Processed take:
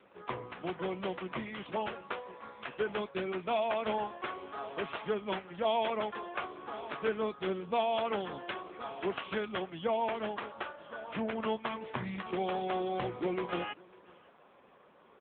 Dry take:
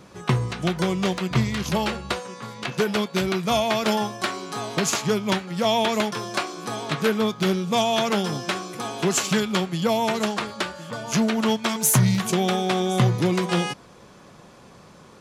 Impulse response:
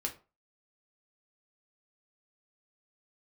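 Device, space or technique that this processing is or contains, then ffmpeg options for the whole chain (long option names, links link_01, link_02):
satellite phone: -af "highpass=340,lowpass=3200,aecho=1:1:551:0.0631,volume=-7dB" -ar 8000 -c:a libopencore_amrnb -b:a 6700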